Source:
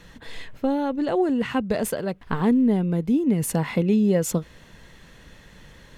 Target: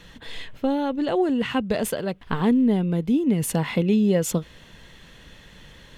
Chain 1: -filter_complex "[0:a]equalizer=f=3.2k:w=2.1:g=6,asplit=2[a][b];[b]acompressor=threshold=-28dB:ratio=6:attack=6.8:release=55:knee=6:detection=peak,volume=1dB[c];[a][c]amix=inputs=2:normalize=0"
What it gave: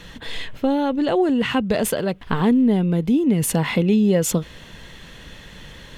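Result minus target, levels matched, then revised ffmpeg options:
compressor: peak gain reduction +12 dB
-af "equalizer=f=3.2k:w=2.1:g=6"

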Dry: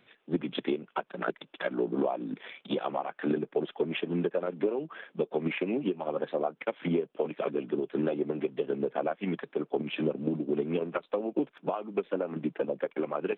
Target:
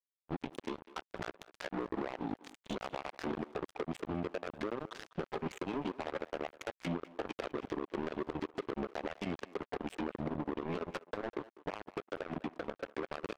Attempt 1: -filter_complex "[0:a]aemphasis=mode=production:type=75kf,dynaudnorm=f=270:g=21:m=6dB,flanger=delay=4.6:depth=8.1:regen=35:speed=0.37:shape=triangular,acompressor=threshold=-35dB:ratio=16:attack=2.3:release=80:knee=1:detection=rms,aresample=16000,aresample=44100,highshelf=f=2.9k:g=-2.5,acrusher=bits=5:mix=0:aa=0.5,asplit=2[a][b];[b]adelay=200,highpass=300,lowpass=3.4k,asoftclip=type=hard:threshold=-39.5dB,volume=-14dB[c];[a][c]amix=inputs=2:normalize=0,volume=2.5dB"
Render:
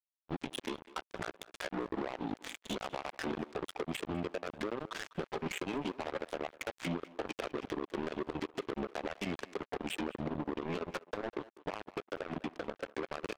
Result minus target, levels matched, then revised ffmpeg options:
8000 Hz band +6.5 dB
-filter_complex "[0:a]aemphasis=mode=production:type=75kf,dynaudnorm=f=270:g=21:m=6dB,flanger=delay=4.6:depth=8.1:regen=35:speed=0.37:shape=triangular,acompressor=threshold=-35dB:ratio=16:attack=2.3:release=80:knee=1:detection=rms,aresample=16000,aresample=44100,highshelf=f=2.9k:g=-13,acrusher=bits=5:mix=0:aa=0.5,asplit=2[a][b];[b]adelay=200,highpass=300,lowpass=3.4k,asoftclip=type=hard:threshold=-39.5dB,volume=-14dB[c];[a][c]amix=inputs=2:normalize=0,volume=2.5dB"

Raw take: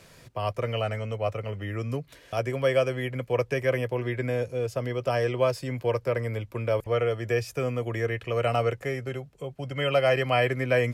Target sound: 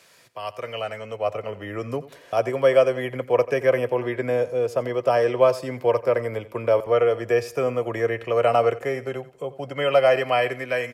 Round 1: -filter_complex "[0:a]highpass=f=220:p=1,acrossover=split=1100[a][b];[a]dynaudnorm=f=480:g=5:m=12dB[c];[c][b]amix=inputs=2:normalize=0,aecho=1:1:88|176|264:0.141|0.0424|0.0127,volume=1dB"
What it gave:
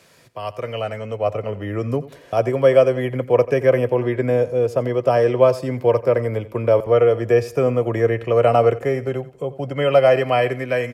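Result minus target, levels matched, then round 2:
250 Hz band +3.0 dB
-filter_complex "[0:a]highpass=f=870:p=1,acrossover=split=1100[a][b];[a]dynaudnorm=f=480:g=5:m=12dB[c];[c][b]amix=inputs=2:normalize=0,aecho=1:1:88|176|264:0.141|0.0424|0.0127,volume=1dB"

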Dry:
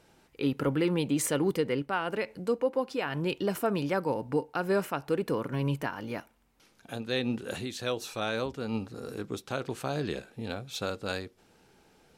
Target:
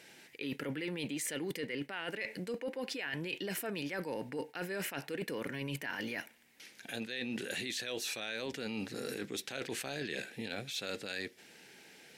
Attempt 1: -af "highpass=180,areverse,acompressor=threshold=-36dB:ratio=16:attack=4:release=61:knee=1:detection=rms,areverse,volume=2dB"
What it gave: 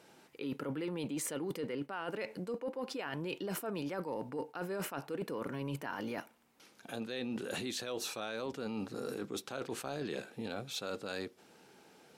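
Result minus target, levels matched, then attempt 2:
2000 Hz band -4.5 dB
-af "highpass=180,highshelf=f=1.5k:t=q:w=3:g=6.5,areverse,acompressor=threshold=-36dB:ratio=16:attack=4:release=61:knee=1:detection=rms,areverse,volume=2dB"

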